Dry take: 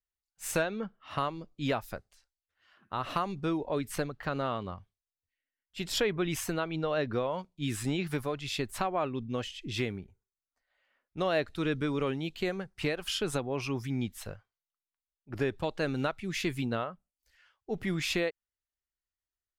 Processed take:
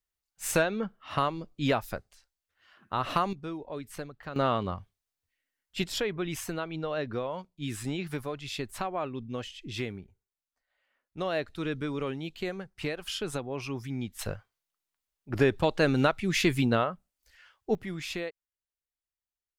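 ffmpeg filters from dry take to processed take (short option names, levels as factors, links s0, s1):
-af "asetnsamples=n=441:p=0,asendcmd='3.33 volume volume -6.5dB;4.36 volume volume 6dB;5.84 volume volume -2dB;14.19 volume volume 7dB;17.75 volume volume -5dB',volume=1.58"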